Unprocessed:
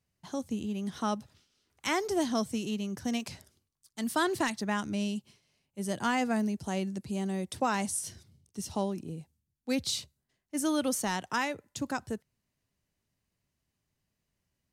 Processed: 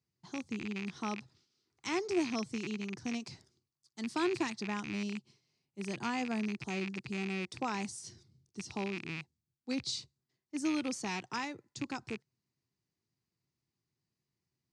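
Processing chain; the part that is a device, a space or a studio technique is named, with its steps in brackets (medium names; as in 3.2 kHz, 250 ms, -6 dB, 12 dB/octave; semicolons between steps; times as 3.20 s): car door speaker with a rattle (rattle on loud lows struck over -41 dBFS, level -22 dBFS; cabinet simulation 99–7500 Hz, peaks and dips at 130 Hz +7 dB, 350 Hz +7 dB, 590 Hz -8 dB, 1.6 kHz -4 dB, 3 kHz -5 dB, 4.7 kHz +5 dB); trim -6 dB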